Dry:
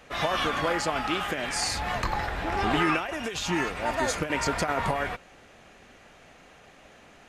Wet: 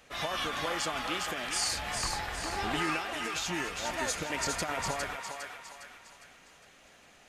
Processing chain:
high-shelf EQ 3,200 Hz +9 dB
feedback echo with a high-pass in the loop 407 ms, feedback 47%, high-pass 700 Hz, level −4 dB
level −8.5 dB

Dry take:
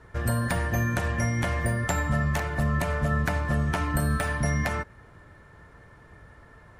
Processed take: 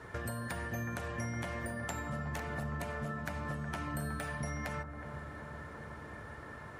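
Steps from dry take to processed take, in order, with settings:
high-pass filter 56 Hz
low-shelf EQ 110 Hz −8.5 dB
downward compressor 5 to 1, threshold −43 dBFS, peak gain reduction 17.5 dB
on a send: bucket-brigade delay 367 ms, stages 4,096, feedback 76%, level −9 dB
on the sum: level +4.5 dB

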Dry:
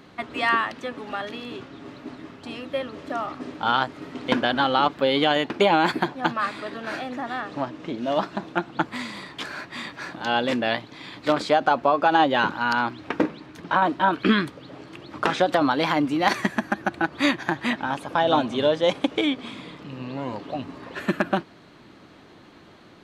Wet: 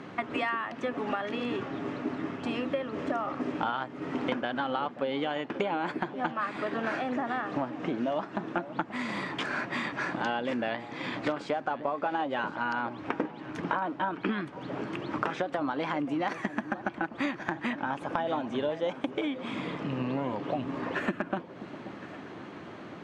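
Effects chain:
high-pass filter 110 Hz
high-frequency loss of the air 80 metres
downward compressor 10 to 1, threshold −34 dBFS, peak gain reduction 19.5 dB
parametric band 4,100 Hz −8.5 dB 0.68 octaves
delay that swaps between a low-pass and a high-pass 532 ms, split 900 Hz, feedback 60%, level −13 dB
level +6.5 dB

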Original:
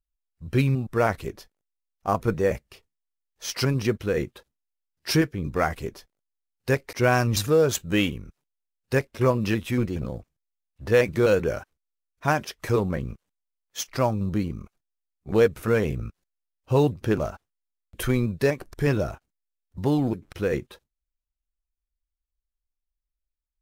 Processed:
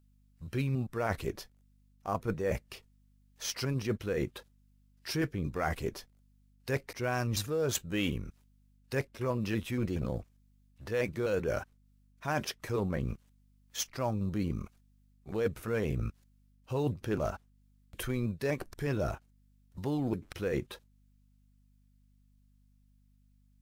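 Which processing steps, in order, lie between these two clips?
reversed playback
downward compressor 6 to 1, threshold −29 dBFS, peak gain reduction 14.5 dB
reversed playback
mains hum 50 Hz, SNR 30 dB
one half of a high-frequency compander encoder only

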